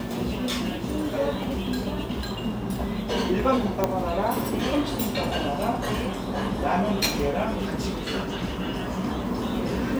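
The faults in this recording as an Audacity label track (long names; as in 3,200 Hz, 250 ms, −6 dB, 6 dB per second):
3.840000	3.840000	click −8 dBFS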